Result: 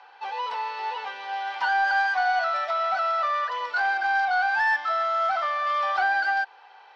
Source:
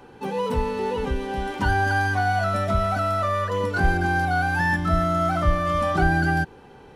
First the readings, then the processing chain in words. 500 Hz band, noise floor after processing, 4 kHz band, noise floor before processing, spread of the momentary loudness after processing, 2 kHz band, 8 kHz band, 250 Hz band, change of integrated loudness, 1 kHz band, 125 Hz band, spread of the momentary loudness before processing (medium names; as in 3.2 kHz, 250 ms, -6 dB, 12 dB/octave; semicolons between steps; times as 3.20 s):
-8.0 dB, -51 dBFS, +1.0 dB, -47 dBFS, 10 LU, +1.0 dB, under -10 dB, under -30 dB, -1.5 dB, +0.5 dB, under -40 dB, 6 LU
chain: elliptic band-pass 750–4900 Hz, stop band 80 dB; in parallel at -12 dB: saturation -24.5 dBFS, distortion -13 dB